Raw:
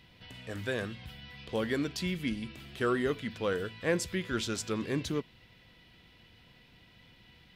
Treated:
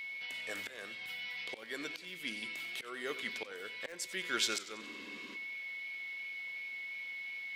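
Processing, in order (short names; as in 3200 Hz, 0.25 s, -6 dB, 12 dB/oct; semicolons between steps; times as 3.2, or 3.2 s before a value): HPF 640 Hz 12 dB/oct; bell 950 Hz -6 dB 2.5 oct; whine 2200 Hz -48 dBFS; in parallel at -5.5 dB: wrapped overs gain 23.5 dB; on the sum: auto swell 0.465 s; reverse; upward compressor, threshold -43 dBFS; reverse; spectral freeze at 4.83, 0.53 s; warbling echo 92 ms, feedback 51%, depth 121 cents, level -15 dB; gain +2.5 dB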